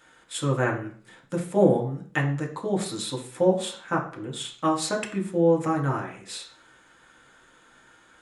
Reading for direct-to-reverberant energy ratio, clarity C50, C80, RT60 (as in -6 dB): 0.0 dB, 10.0 dB, 13.5 dB, 0.50 s